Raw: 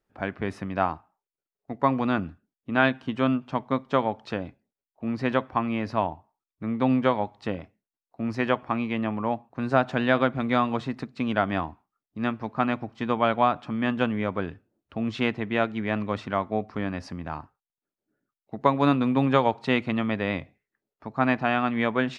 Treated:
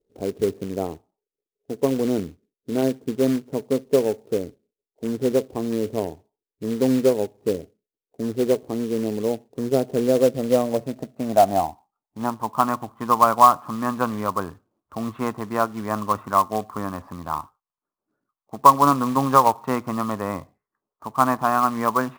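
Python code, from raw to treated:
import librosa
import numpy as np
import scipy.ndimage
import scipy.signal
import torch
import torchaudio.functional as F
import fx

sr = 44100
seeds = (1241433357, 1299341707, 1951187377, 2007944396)

y = fx.filter_sweep_lowpass(x, sr, from_hz=440.0, to_hz=1100.0, start_s=10.02, end_s=12.73, q=5.7)
y = fx.quant_float(y, sr, bits=2)
y = F.gain(torch.from_numpy(y), -1.0).numpy()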